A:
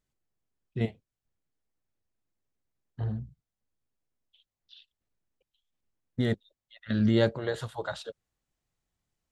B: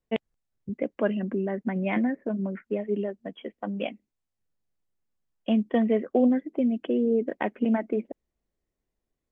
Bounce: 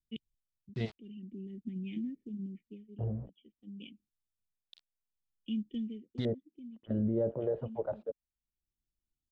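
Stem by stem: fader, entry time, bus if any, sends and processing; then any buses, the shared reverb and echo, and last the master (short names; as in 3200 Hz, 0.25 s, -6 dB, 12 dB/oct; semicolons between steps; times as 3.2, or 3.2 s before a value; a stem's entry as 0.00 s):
-4.0 dB, 0.00 s, no send, sample gate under -44.5 dBFS; LFO low-pass square 0.24 Hz 550–4700 Hz
-8.0 dB, 0.00 s, no send, elliptic band-stop 320–3000 Hz, stop band 40 dB; comb 1.7 ms, depth 43%; auto duck -11 dB, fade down 0.40 s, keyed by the first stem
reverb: off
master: limiter -23 dBFS, peak gain reduction 10.5 dB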